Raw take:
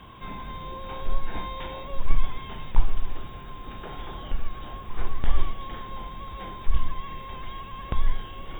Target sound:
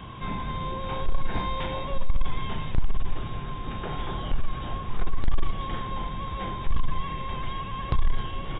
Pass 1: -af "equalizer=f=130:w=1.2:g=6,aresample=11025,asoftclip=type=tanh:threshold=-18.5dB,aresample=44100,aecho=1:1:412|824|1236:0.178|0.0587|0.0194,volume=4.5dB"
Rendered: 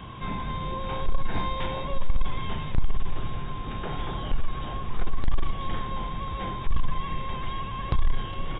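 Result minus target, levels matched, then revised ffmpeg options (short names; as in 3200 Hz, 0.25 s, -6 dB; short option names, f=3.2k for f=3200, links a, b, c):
echo 0.148 s late
-af "equalizer=f=130:w=1.2:g=6,aresample=11025,asoftclip=type=tanh:threshold=-18.5dB,aresample=44100,aecho=1:1:264|528|792:0.178|0.0587|0.0194,volume=4.5dB"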